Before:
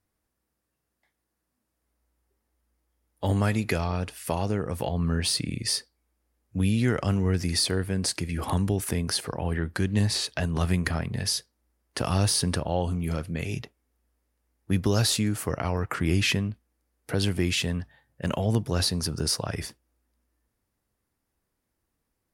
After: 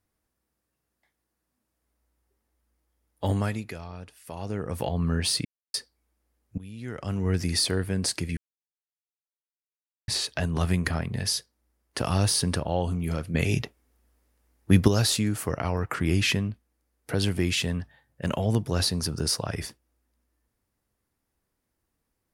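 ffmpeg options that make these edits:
ffmpeg -i in.wav -filter_complex "[0:a]asplit=10[link_01][link_02][link_03][link_04][link_05][link_06][link_07][link_08][link_09][link_10];[link_01]atrim=end=3.72,asetpts=PTS-STARTPTS,afade=type=out:start_time=3.25:duration=0.47:silence=0.251189[link_11];[link_02]atrim=start=3.72:end=4.31,asetpts=PTS-STARTPTS,volume=-12dB[link_12];[link_03]atrim=start=4.31:end=5.45,asetpts=PTS-STARTPTS,afade=type=in:duration=0.47:silence=0.251189,afade=type=out:start_time=1.136:duration=0.004:curve=hsin[link_13];[link_04]atrim=start=5.45:end=5.74,asetpts=PTS-STARTPTS,volume=0[link_14];[link_05]atrim=start=5.74:end=6.58,asetpts=PTS-STARTPTS,afade=type=in:duration=0.004:curve=hsin,afade=type=out:start_time=0.836:duration=0.004:curve=hsin:silence=0.1[link_15];[link_06]atrim=start=6.58:end=8.37,asetpts=PTS-STARTPTS,afade=type=in:duration=0.76:curve=qua:silence=0.1,afade=type=out:start_time=1.786:duration=0.004:curve=hsin[link_16];[link_07]atrim=start=8.37:end=10.08,asetpts=PTS-STARTPTS,volume=0[link_17];[link_08]atrim=start=10.08:end=13.342,asetpts=PTS-STARTPTS,afade=type=in:duration=0.004:curve=hsin[link_18];[link_09]atrim=start=13.338:end=14.882,asetpts=PTS-STARTPTS,volume=6.5dB[link_19];[link_10]atrim=start=14.878[link_20];[link_11][link_12][link_13][link_14][link_15][link_16][link_17][link_18]concat=n=8:v=0:a=1[link_21];[link_21][link_19]acrossfade=duration=0.004:curve1=hsin:curve2=hsin[link_22];[link_22][link_20]acrossfade=duration=0.004:curve1=hsin:curve2=hsin" out.wav

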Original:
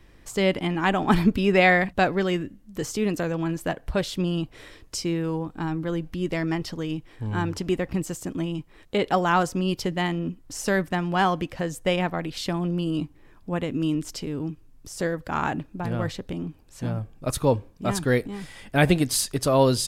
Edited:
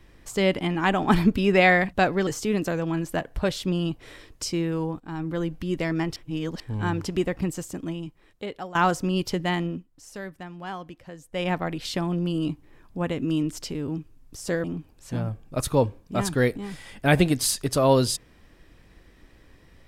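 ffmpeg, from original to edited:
ffmpeg -i in.wav -filter_complex "[0:a]asplit=9[link_01][link_02][link_03][link_04][link_05][link_06][link_07][link_08][link_09];[link_01]atrim=end=2.272[link_10];[link_02]atrim=start=2.788:end=5.52,asetpts=PTS-STARTPTS,afade=type=out:start_time=2.728:duration=0.004:curve=hsin:silence=0.237137[link_11];[link_03]atrim=start=5.52:end=6.682,asetpts=PTS-STARTPTS,afade=type=in:duration=0.32:silence=0.237137[link_12];[link_04]atrim=start=6.678:end=7.122,asetpts=PTS-STARTPTS,areverse[link_13];[link_05]atrim=start=7.118:end=9.27,asetpts=PTS-STARTPTS,afade=type=out:start_time=0.792:duration=1.36:silence=0.133352[link_14];[link_06]atrim=start=9.27:end=10.38,asetpts=PTS-STARTPTS,afade=type=in:duration=0.004:curve=hsin:silence=0.133352,afade=type=out:start_time=0.91:duration=0.2:silence=0.211349[link_15];[link_07]atrim=start=10.38:end=11.83,asetpts=PTS-STARTPTS,volume=-13.5dB[link_16];[link_08]atrim=start=11.83:end=15.162,asetpts=PTS-STARTPTS,afade=type=in:duration=0.2:silence=0.211349[link_17];[link_09]atrim=start=16.338[link_18];[link_11][link_12]concat=n=2:v=0:a=1[link_19];[link_10][link_19]acrossfade=duration=0.004:curve1=hsin:curve2=hsin[link_20];[link_20][link_13]acrossfade=duration=0.004:curve1=hsin:curve2=hsin[link_21];[link_14][link_15][link_16][link_17]concat=n=4:v=0:a=1[link_22];[link_21][link_22]acrossfade=duration=0.004:curve1=hsin:curve2=hsin[link_23];[link_23][link_18]acrossfade=duration=0.004:curve1=hsin:curve2=hsin" out.wav

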